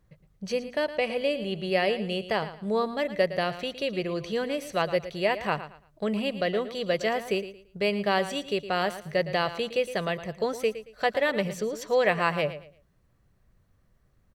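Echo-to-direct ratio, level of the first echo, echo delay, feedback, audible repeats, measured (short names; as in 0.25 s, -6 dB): -12.5 dB, -13.0 dB, 0.113 s, 26%, 2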